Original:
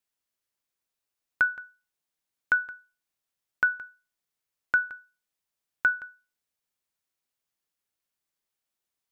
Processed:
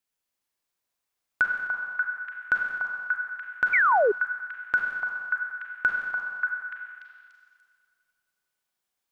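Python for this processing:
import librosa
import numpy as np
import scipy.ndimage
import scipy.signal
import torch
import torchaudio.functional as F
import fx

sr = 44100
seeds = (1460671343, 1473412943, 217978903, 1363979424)

y = fx.echo_stepped(x, sr, ms=292, hz=870.0, octaves=0.7, feedback_pct=70, wet_db=-1.0)
y = fx.rev_schroeder(y, sr, rt60_s=2.0, comb_ms=32, drr_db=1.0)
y = fx.spec_paint(y, sr, seeds[0], shape='fall', start_s=3.73, length_s=0.39, low_hz=380.0, high_hz=2400.0, level_db=-20.0)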